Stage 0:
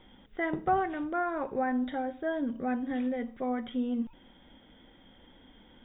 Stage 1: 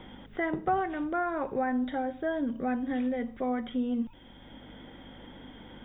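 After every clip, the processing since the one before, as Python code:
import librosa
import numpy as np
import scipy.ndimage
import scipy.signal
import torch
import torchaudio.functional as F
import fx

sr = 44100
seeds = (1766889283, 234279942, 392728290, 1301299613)

y = fx.add_hum(x, sr, base_hz=50, snr_db=27)
y = fx.band_squash(y, sr, depth_pct=40)
y = F.gain(torch.from_numpy(y), 1.0).numpy()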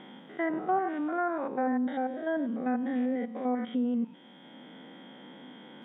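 y = fx.spec_steps(x, sr, hold_ms=100)
y = fx.env_lowpass_down(y, sr, base_hz=1900.0, full_db=-26.0)
y = fx.brickwall_highpass(y, sr, low_hz=150.0)
y = F.gain(torch.from_numpy(y), 1.5).numpy()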